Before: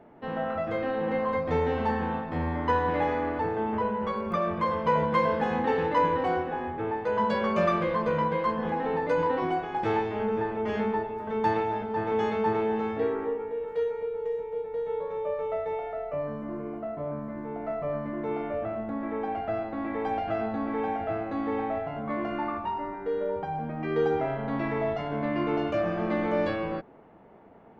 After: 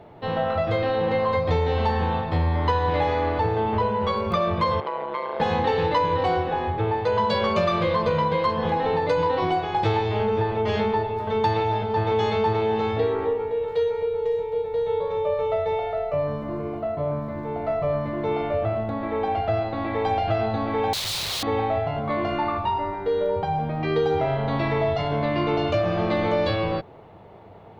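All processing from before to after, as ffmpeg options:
-filter_complex "[0:a]asettb=1/sr,asplit=3[s0][s1][s2];[s0]atrim=end=4.804[s3];[s1]atrim=start=4.8:end=5.4,asetpts=PTS-STARTPTS,afade=t=in:d=0.004:c=qsin,afade=t=out:st=0.596:d=0.004:c=qsin,acompressor=threshold=0.0501:ratio=10:attack=3.2:release=140:knee=1:detection=peak,tremolo=f=140:d=0.974,highpass=390,lowpass=2500[s4];[s2]atrim=start=5.396[s5];[s3][s4]acrossfade=d=0.004:c1=hsin:c2=qsin[s6];[s6][s5]acrossfade=d=0.004:c1=qsin:c2=hsin,asettb=1/sr,asplit=3[s7][s8][s9];[s7]atrim=end=20.934[s10];[s8]atrim=start=20.93:end=21.43,asetpts=PTS-STARTPTS,afade=t=in:d=0.004:c=qsin,afade=t=out:st=0.496:d=0.004:c=qsin,bandreject=f=1500:w=7.1,aeval=exprs='(mod(56.2*val(0)+1,2)-1)/56.2':c=same[s11];[s9]atrim=start=21.426[s12];[s10][s11]acrossfade=d=0.004:c1=hsin:c2=qsin[s13];[s13][s12]acrossfade=d=0.004:c1=qsin:c2=hsin,equalizer=f=100:t=o:w=0.67:g=11,equalizer=f=250:t=o:w=0.67:g=-9,equalizer=f=1600:t=o:w=0.67:g=-5,equalizer=f=4000:t=o:w=0.67:g=11,acompressor=threshold=0.0501:ratio=6,volume=2.51"

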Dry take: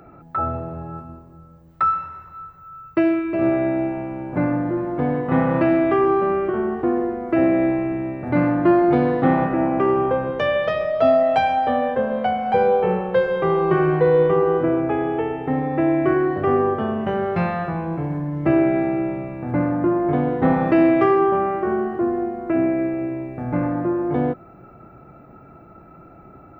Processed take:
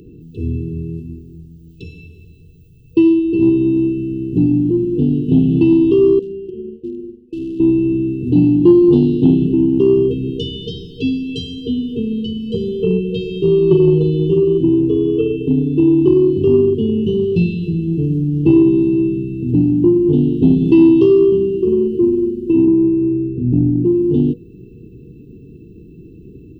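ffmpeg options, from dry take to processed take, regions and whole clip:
-filter_complex "[0:a]asettb=1/sr,asplit=3[s0][s1][s2];[s0]atrim=end=6.194[s3];[s1]atrim=start=6.19:end=7.6,asetpts=PTS-STARTPTS,afade=t=in:d=0.004:c=qsin,afade=t=out:st=1.406:d=0.004:c=qsin,agate=range=0.0224:threshold=0.178:ratio=3:release=100:detection=peak,acompressor=threshold=0.02:ratio=2.5:attack=3.2:release=140:knee=1:detection=peak,asoftclip=type=hard:threshold=0.0447[s4];[s2]atrim=start=7.596[s5];[s3][s4]acrossfade=d=0.004:c1=hsin:c2=qsin[s6];[s6][s5]acrossfade=d=0.004:c1=qsin:c2=hsin,asettb=1/sr,asplit=3[s7][s8][s9];[s7]atrim=end=22.654[s10];[s8]atrim=start=22.65:end=23.85,asetpts=PTS-STARTPTS,afade=t=in:d=0.004:c=qsin,afade=t=out:st=1.196:d=0.004:c=qsin,lowpass=f=1200:p=1,asplit=2[s11][s12];[s12]adelay=25,volume=0.631[s13];[s11][s13]amix=inputs=2:normalize=0,atrim=end_sample=52920[s14];[s9]atrim=start=23.846[s15];[s10][s14]acrossfade=d=0.004:c1=hsin:c2=qsin[s16];[s16][s15]acrossfade=d=0.004:c1=qsin:c2=hsin,afftfilt=real='re*(1-between(b*sr/4096,480,2600))':imag='im*(1-between(b*sr/4096,480,2600))':win_size=4096:overlap=0.75,lowshelf=f=150:g=2,acontrast=35,volume=1.33"

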